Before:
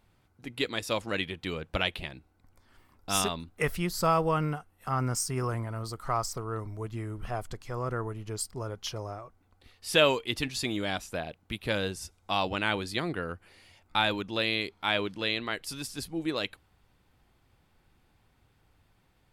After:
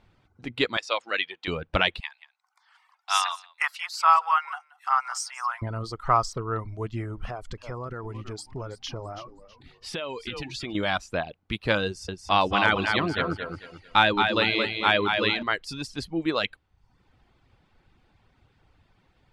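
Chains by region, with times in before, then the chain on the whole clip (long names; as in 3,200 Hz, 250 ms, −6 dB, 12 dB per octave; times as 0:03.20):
0:00.77–0:01.48: band-pass filter 640–7,300 Hz + dynamic equaliser 930 Hz, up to −4 dB, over −44 dBFS, Q 2.2
0:02.00–0:05.62: Butterworth high-pass 800 Hz 48 dB per octave + high-shelf EQ 9,600 Hz +4 dB + single-tap delay 179 ms −13 dB
0:07.25–0:10.75: echo with shifted repeats 324 ms, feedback 31%, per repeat −120 Hz, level −15 dB + downward compressor 8 to 1, threshold −34 dBFS
0:11.86–0:15.43: repeating echo 222 ms, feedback 35%, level −4 dB + hard clipping −13 dBFS
whole clip: low-pass filter 5,000 Hz 12 dB per octave; reverb reduction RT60 0.68 s; dynamic equaliser 1,200 Hz, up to +5 dB, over −41 dBFS, Q 1.4; level +5.5 dB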